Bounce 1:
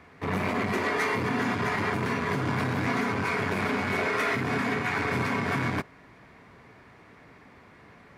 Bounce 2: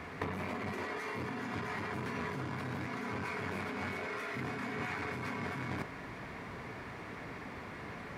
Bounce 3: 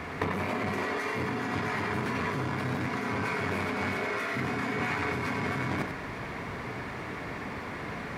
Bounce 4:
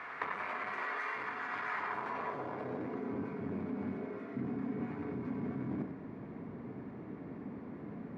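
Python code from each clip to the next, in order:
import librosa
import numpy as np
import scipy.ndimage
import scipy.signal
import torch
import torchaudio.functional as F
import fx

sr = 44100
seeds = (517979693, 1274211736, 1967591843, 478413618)

y1 = fx.over_compress(x, sr, threshold_db=-37.0, ratio=-1.0)
y1 = y1 * 10.0 ** (-1.5 / 20.0)
y2 = y1 + 10.0 ** (-7.5 / 20.0) * np.pad(y1, (int(93 * sr / 1000.0), 0))[:len(y1)]
y2 = y2 * 10.0 ** (7.0 / 20.0)
y3 = fx.filter_sweep_bandpass(y2, sr, from_hz=1400.0, to_hz=240.0, start_s=1.69, end_s=3.36, q=1.5)
y3 = y3 * 10.0 ** (-1.5 / 20.0)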